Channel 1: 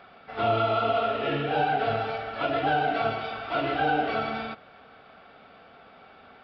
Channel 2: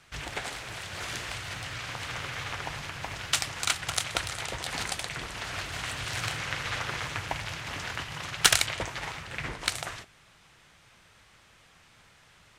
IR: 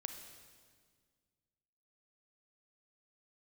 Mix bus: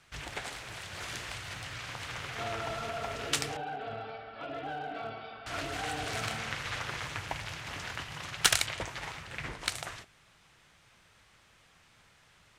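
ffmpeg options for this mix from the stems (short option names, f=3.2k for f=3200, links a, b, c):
-filter_complex "[0:a]alimiter=limit=-18.5dB:level=0:latency=1:release=25,asoftclip=type=hard:threshold=-21dB,adelay=2000,volume=-11.5dB[a];[1:a]volume=-4dB,asplit=3[b][c][d];[b]atrim=end=3.57,asetpts=PTS-STARTPTS,afade=t=out:st=3.566:d=0.004:c=hsin[e];[c]atrim=start=3.57:end=5.46,asetpts=PTS-STARTPTS,volume=0[f];[d]atrim=start=5.46,asetpts=PTS-STARTPTS,afade=t=in:d=0.004:c=hsin[g];[e][f][g]concat=n=3:v=0:a=1[h];[a][h]amix=inputs=2:normalize=0"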